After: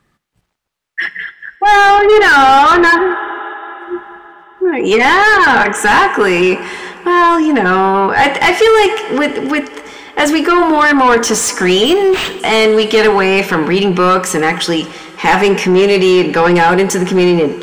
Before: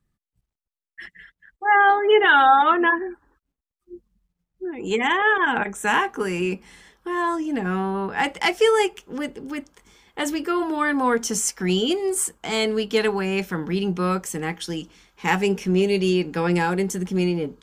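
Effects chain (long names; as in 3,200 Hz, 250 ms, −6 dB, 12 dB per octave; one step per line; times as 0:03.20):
coupled-rooms reverb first 0.48 s, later 3.7 s, from −15 dB, DRR 14 dB
mid-hump overdrive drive 23 dB, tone 2,200 Hz, clips at −4 dBFS
in parallel at +0.5 dB: brickwall limiter −16.5 dBFS, peak gain reduction 11.5 dB
0:11.85–0:12.40: on the sum: linearly interpolated sample-rate reduction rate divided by 4×
level +1.5 dB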